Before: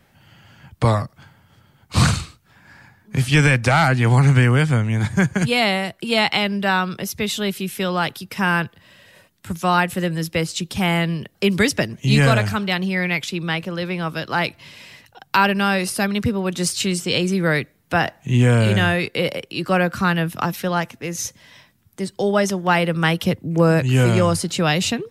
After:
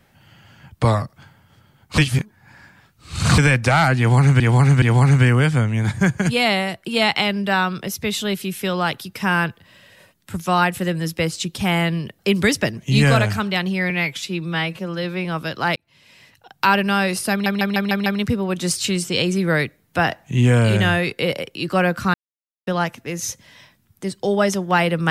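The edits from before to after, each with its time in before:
0:01.98–0:03.38: reverse
0:03.98–0:04.40: repeat, 3 plays
0:13.06–0:13.96: time-stretch 1.5×
0:14.47–0:15.39: fade in
0:16.02: stutter 0.15 s, 6 plays
0:20.10–0:20.63: silence

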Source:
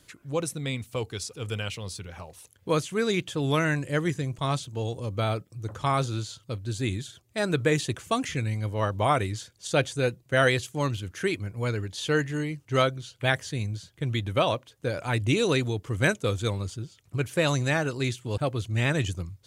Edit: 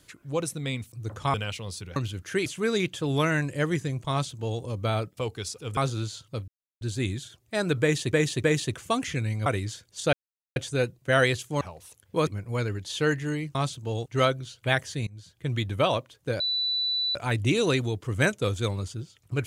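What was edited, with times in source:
0:00.92–0:01.52: swap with 0:05.51–0:05.93
0:02.14–0:02.80: swap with 0:10.85–0:11.35
0:04.45–0:04.96: duplicate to 0:12.63
0:06.64: splice in silence 0.33 s
0:07.65–0:07.96: repeat, 3 plays
0:08.67–0:09.13: remove
0:09.80: splice in silence 0.43 s
0:13.64–0:14.04: fade in, from −24 dB
0:14.97: insert tone 3,970 Hz −24 dBFS 0.75 s

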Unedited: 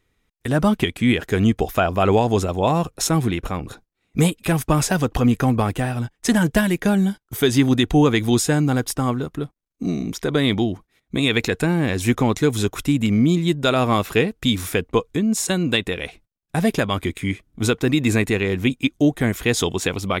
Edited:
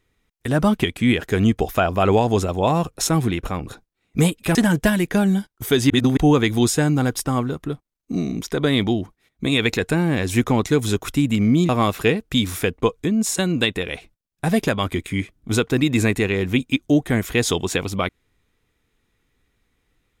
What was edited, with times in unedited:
0:04.55–0:06.26: remove
0:07.61–0:07.88: reverse
0:13.40–0:13.80: remove

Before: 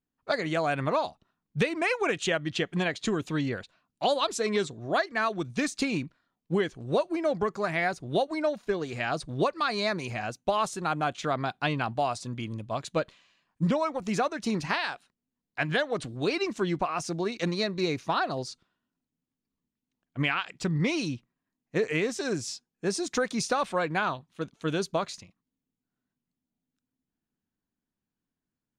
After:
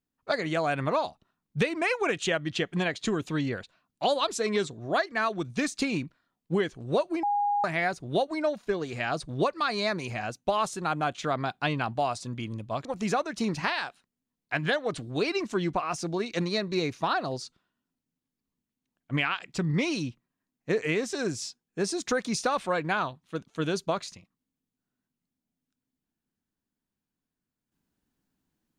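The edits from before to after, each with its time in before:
0:07.23–0:07.64: beep over 819 Hz −23 dBFS
0:12.85–0:13.91: remove

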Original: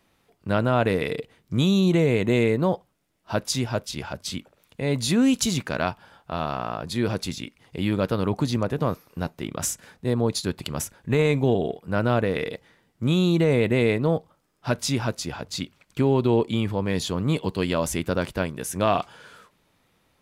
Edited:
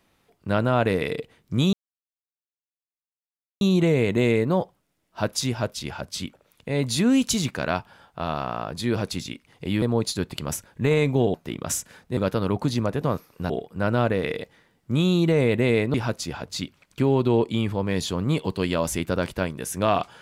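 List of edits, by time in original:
0:01.73: splice in silence 1.88 s
0:07.94–0:09.27: swap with 0:10.10–0:11.62
0:14.06–0:14.93: remove

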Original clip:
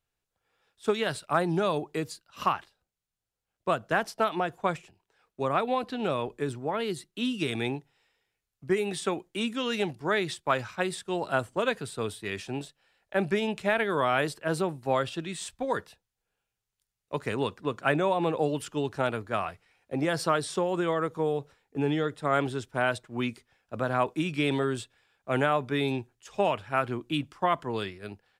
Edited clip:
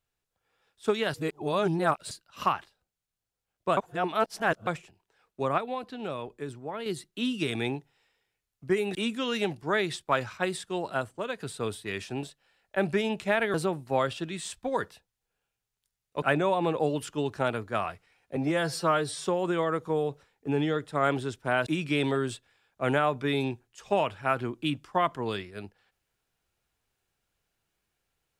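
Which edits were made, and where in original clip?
0:01.14–0:02.11: reverse
0:03.77–0:04.67: reverse
0:05.58–0:06.86: clip gain −6 dB
0:08.95–0:09.33: remove
0:10.97–0:11.78: fade out, to −8.5 dB
0:13.92–0:14.50: remove
0:17.18–0:17.81: remove
0:19.95–0:20.54: time-stretch 1.5×
0:22.96–0:24.14: remove

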